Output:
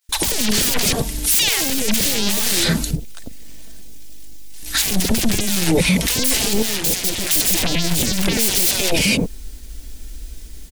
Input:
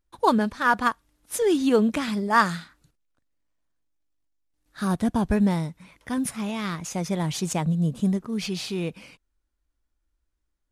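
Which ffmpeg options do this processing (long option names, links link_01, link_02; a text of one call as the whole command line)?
ffmpeg -i in.wav -filter_complex "[0:a]asettb=1/sr,asplit=3[link_01][link_02][link_03];[link_01]atrim=end=7.844[link_04];[link_02]atrim=start=7.84:end=8.24,asetpts=PTS-STARTPTS,afade=type=in:duration=0.004:curve=qsin,afade=type=out:start_time=0.396:duration=0.004:curve=qsin,aeval=exprs='val(0)+0.5*0.0188*sgn(val(0))':channel_layout=same[link_05];[link_03]atrim=start=8.236[link_06];[link_04][link_05]acrossfade=duration=0.004:curve1=hsin:curve2=qsin[link_07];[link_07][link_06]acrossfade=duration=0.004:curve1=qsin:curve2=hsin,aecho=1:1:4.5:0.4,aeval=exprs='(tanh(31.6*val(0)+0.35)-tanh(0.35))/31.6':channel_layout=same,asettb=1/sr,asplit=3[link_08][link_09][link_10];[link_08]atrim=end=0.844[link_11];[link_09]atrim=start=0.84:end=1.61,asetpts=PTS-STARTPTS,afade=type=in:duration=0.004:curve=qsin,afade=type=out:start_time=0.766:duration=0.004:curve=qsin,acrossover=split=180|370[link_12][link_13][link_14];[link_12]acompressor=threshold=-47dB:ratio=4[link_15];[link_13]acompressor=threshold=-43dB:ratio=4[link_16];[link_14]acompressor=threshold=-34dB:ratio=4[link_17];[link_15][link_16][link_17]amix=inputs=3:normalize=0[link_18];[link_10]atrim=start=1.606[link_19];[link_11][link_18]acrossfade=duration=0.004:curve1=hsin:curve2=qsin[link_20];[link_20][link_19]acrossfade=duration=0.004:curve1=qsin:curve2=hsin,aeval=exprs='0.0631*sin(PI/2*8.91*val(0)/0.0631)':channel_layout=same,equalizer=frequency=1200:width_type=o:width=1.2:gain=-12.5,asettb=1/sr,asplit=3[link_21][link_22][link_23];[link_21]atrim=end=6.534[link_24];[link_22]atrim=start=6.53:end=7.27,asetpts=PTS-STARTPTS,afade=type=in:duration=0.004:curve=qsin,afade=type=out:start_time=0.736:duration=0.004:curve=qsin,acompressor=threshold=-41dB:ratio=12[link_25];[link_23]atrim=start=7.266[link_26];[link_24][link_25]acrossfade=duration=0.004:curve1=hsin:curve2=qsin[link_27];[link_27][link_26]acrossfade=duration=0.004:curve1=qsin:curve2=hsin,highshelf=frequency=3300:gain=5,acrossover=split=800[link_28][link_29];[link_28]adelay=90[link_30];[link_30][link_29]amix=inputs=2:normalize=0,agate=range=-33dB:threshold=-52dB:ratio=3:detection=peak,alimiter=level_in=26.5dB:limit=-1dB:release=50:level=0:latency=1,volume=-6.5dB" out.wav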